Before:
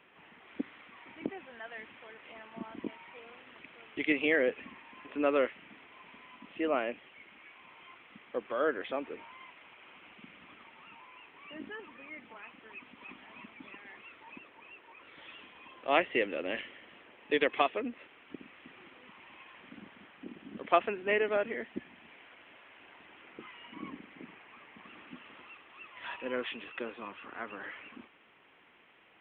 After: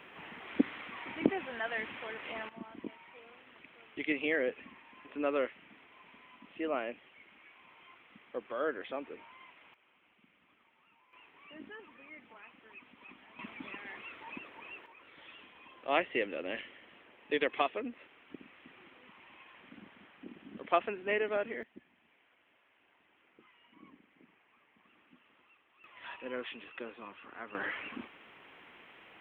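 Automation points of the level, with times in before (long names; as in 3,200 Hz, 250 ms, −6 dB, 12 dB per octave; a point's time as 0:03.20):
+8.5 dB
from 0:02.49 −4 dB
from 0:09.74 −14.5 dB
from 0:11.13 −5 dB
from 0:13.39 +4.5 dB
from 0:14.86 −3 dB
from 0:21.63 −14 dB
from 0:25.84 −4.5 dB
from 0:27.55 +6.5 dB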